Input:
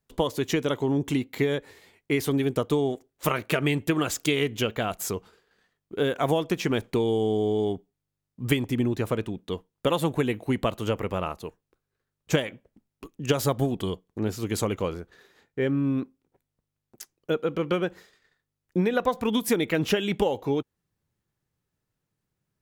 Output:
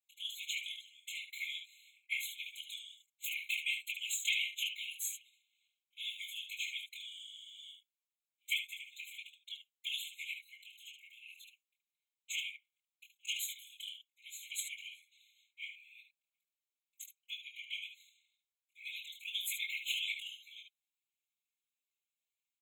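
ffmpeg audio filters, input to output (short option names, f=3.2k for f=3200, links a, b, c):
-filter_complex "[0:a]asettb=1/sr,asplit=3[a][b][c];[a]atrim=end=10.494[d];[b]atrim=start=10.49:end=11.28,asetpts=PTS-STARTPTS,afade=t=in:d=0.004:c=qsin,afade=t=out:st=0.786:d=0.004:c=qsin,acompressor=threshold=-32dB:ratio=10[e];[c]atrim=start=11.276[f];[d][e]acrossfade=d=0.004:c1=hsin:c2=qsin[g];[g][f]acrossfade=d=0.004:c1=qsin:c2=hsin,aecho=1:1:23|74:0.668|0.447,afftfilt=real='hypot(re,im)*cos(2*PI*random(0))':imag='hypot(re,im)*sin(2*PI*random(1))':win_size=512:overlap=0.75,afftfilt=real='re*eq(mod(floor(b*sr/1024/2100),2),1)':imag='im*eq(mod(floor(b*sr/1024/2100),2),1)':win_size=1024:overlap=0.75,volume=1dB"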